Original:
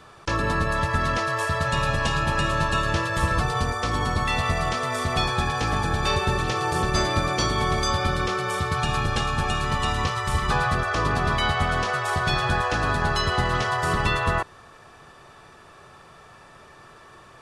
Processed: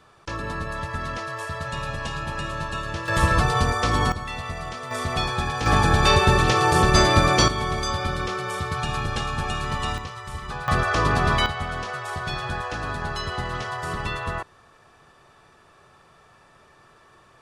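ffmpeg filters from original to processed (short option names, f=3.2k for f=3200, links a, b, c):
-af "asetnsamples=n=441:p=0,asendcmd='3.08 volume volume 3.5dB;4.12 volume volume -8dB;4.91 volume volume -1.5dB;5.66 volume volume 6dB;7.48 volume volume -2.5dB;9.98 volume volume -10dB;10.68 volume volume 2.5dB;11.46 volume volume -6dB',volume=-6.5dB"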